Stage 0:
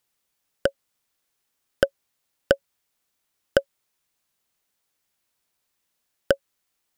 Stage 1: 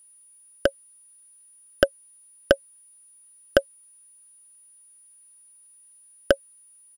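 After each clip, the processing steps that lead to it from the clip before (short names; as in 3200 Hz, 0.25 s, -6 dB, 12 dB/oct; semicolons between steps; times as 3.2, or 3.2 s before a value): comb 3.1 ms, depth 42%; whine 9700 Hz -53 dBFS; gain +1.5 dB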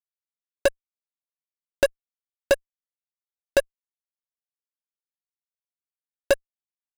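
fuzz box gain 32 dB, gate -34 dBFS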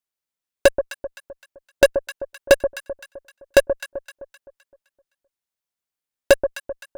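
echo with dull and thin repeats by turns 0.129 s, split 1100 Hz, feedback 62%, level -9 dB; gain +6.5 dB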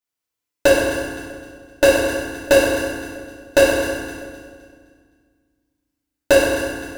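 FDN reverb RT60 1.7 s, low-frequency decay 1.5×, high-frequency decay 0.75×, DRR -9 dB; gain -4 dB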